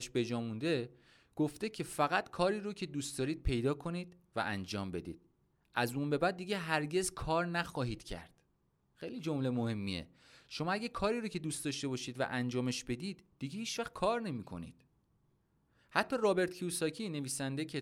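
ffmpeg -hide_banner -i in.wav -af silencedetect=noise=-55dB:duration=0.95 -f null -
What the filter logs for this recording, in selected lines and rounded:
silence_start: 14.80
silence_end: 15.90 | silence_duration: 1.09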